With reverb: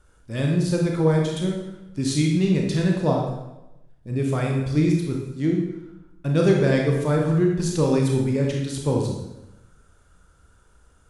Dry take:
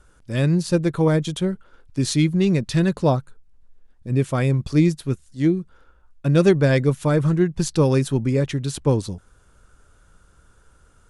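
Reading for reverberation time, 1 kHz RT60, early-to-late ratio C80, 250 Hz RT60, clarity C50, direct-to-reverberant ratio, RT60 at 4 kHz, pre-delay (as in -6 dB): 0.95 s, 0.90 s, 5.5 dB, 1.0 s, 3.0 dB, -0.5 dB, 0.80 s, 24 ms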